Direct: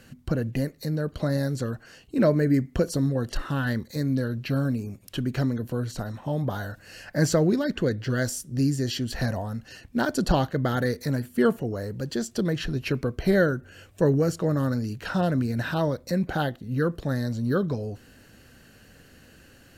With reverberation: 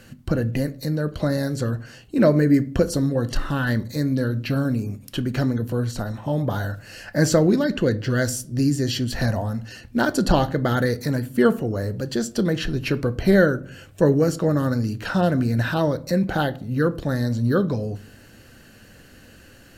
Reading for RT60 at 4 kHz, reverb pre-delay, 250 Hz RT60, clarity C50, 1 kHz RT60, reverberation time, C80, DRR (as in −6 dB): 0.30 s, 3 ms, 0.70 s, 21.0 dB, 0.45 s, 0.50 s, 25.5 dB, 12.0 dB